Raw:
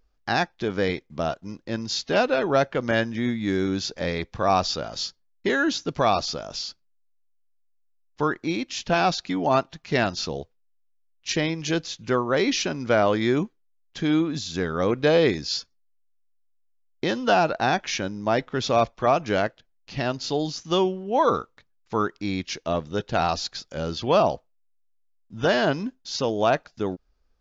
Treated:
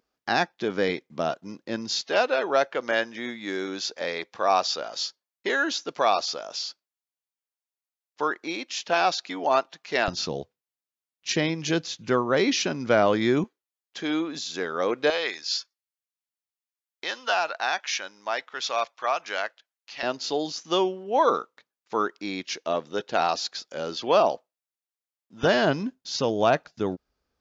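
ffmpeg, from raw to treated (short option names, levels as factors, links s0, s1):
-af "asetnsamples=n=441:p=0,asendcmd='2.01 highpass f 450;10.08 highpass f 120;13.44 highpass f 390;15.1 highpass f 960;20.03 highpass f 320;25.43 highpass f 89',highpass=200"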